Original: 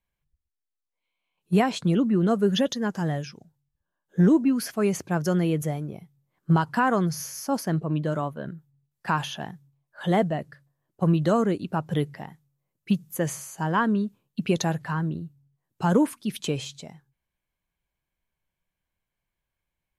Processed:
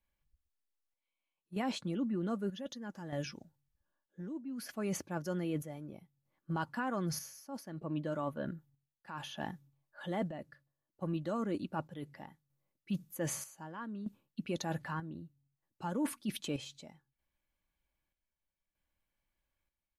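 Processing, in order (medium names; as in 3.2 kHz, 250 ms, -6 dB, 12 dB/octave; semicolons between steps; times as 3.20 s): peaking EQ 7.9 kHz -2.5 dB 0.92 oct; comb 3.5 ms, depth 39%; reverse; compression 5:1, threshold -31 dBFS, peak gain reduction 16 dB; reverse; square tremolo 0.64 Hz, depth 60%, duty 60%; trim -2.5 dB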